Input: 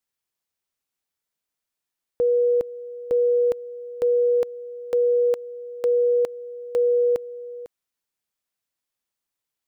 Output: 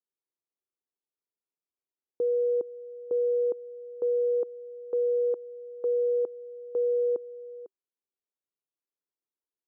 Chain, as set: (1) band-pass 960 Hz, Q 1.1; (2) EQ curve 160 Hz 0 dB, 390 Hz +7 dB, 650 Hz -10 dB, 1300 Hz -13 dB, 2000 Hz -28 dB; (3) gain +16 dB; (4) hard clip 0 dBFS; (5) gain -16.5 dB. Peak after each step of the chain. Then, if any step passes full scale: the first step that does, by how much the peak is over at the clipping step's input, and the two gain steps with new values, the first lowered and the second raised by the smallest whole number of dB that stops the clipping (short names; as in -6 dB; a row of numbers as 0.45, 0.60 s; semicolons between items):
-20.5, -20.5, -4.5, -4.5, -21.0 dBFS; no overload